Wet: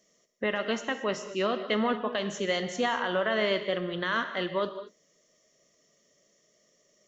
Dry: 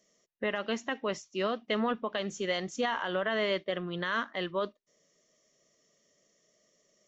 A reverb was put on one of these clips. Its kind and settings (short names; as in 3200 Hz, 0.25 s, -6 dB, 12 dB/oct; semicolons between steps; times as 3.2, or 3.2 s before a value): non-linear reverb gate 0.25 s flat, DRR 8.5 dB; gain +2.5 dB